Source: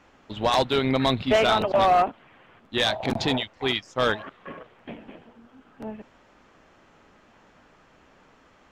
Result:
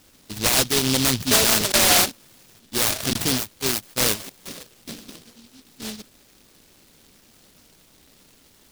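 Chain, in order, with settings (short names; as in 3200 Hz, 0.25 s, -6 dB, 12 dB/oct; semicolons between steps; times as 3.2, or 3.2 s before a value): noise-modulated delay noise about 4100 Hz, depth 0.38 ms; gain +2 dB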